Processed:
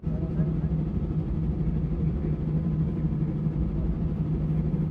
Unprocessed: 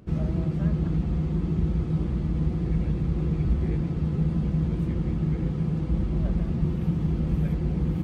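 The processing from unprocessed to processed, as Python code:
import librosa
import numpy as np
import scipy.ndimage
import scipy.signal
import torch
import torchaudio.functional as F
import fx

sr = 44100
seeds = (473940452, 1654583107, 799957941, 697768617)

p1 = fx.high_shelf(x, sr, hz=2300.0, db=-10.0)
p2 = fx.stretch_grains(p1, sr, factor=0.61, grain_ms=161.0)
p3 = fx.low_shelf(p2, sr, hz=98.0, db=-5.0)
y = p3 + fx.echo_single(p3, sr, ms=239, db=-5.5, dry=0)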